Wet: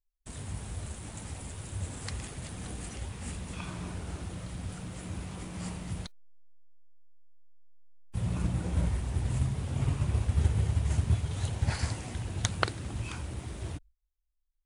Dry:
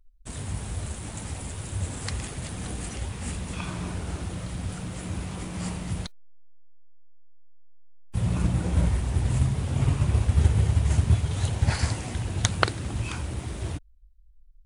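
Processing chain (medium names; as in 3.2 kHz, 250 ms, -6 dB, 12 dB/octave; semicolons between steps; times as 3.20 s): gate with hold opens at -42 dBFS; trim -6 dB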